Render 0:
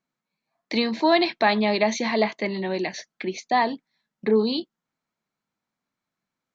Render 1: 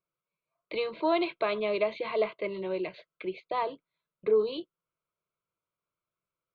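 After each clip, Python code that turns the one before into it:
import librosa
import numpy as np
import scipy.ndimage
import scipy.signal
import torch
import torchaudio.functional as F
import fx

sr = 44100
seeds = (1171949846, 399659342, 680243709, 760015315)

y = fx.air_absorb(x, sr, metres=310.0)
y = fx.fixed_phaser(y, sr, hz=1200.0, stages=8)
y = F.gain(torch.from_numpy(y), -1.5).numpy()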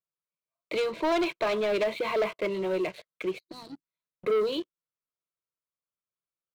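y = fx.spec_box(x, sr, start_s=3.39, length_s=0.43, low_hz=360.0, high_hz=3800.0, gain_db=-23)
y = fx.leveller(y, sr, passes=3)
y = F.gain(torch.from_numpy(y), -5.5).numpy()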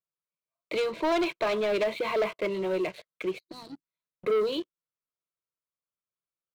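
y = x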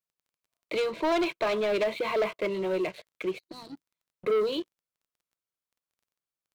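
y = fx.dmg_crackle(x, sr, seeds[0], per_s=16.0, level_db=-57.0)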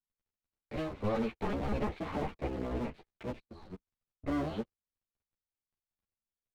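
y = fx.cycle_switch(x, sr, every=3, mode='inverted')
y = fx.riaa(y, sr, side='playback')
y = fx.ensemble(y, sr)
y = F.gain(torch.from_numpy(y), -8.0).numpy()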